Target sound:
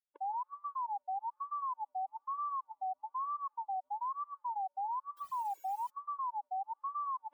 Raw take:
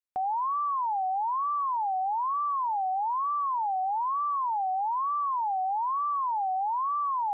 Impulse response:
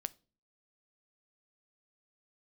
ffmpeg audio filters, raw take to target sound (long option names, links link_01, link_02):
-filter_complex "[0:a]aresample=8000,aresample=44100,asettb=1/sr,asplit=3[link_01][link_02][link_03];[link_01]atrim=end=5.174[link_04];[link_02]atrim=start=5.17:end=5.9,asetpts=PTS-STARTPTS,afade=type=in:duration=0.004:curve=qsin,afade=type=out:start_time=0.726:duration=0.004:curve=qsin,acrusher=bits=5:mode=log:mix=0:aa=0.000001[link_05];[link_03]atrim=start=5.896[link_06];[link_04][link_05]acrossfade=duration=0.004:curve1=hsin:curve2=qsin[link_07];[link_07][link_06]acrossfade=duration=0.004:curve1=qsin:curve2=hsin,afftfilt=real='re*gt(sin(2*PI*4.6*pts/sr)*(1-2*mod(floor(b*sr/1024/290),2)),0)':imag='im*gt(sin(2*PI*4.6*pts/sr)*(1-2*mod(floor(b*sr/1024/290),2)),0)':win_size=1024:overlap=0.75,volume=-7dB"